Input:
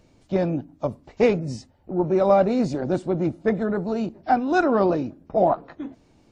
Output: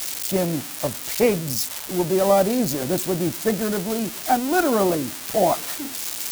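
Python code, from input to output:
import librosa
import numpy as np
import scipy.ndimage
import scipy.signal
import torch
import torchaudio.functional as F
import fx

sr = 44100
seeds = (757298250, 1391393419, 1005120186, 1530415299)

y = x + 0.5 * 10.0 ** (-15.0 / 20.0) * np.diff(np.sign(x), prepend=np.sign(x[:1]))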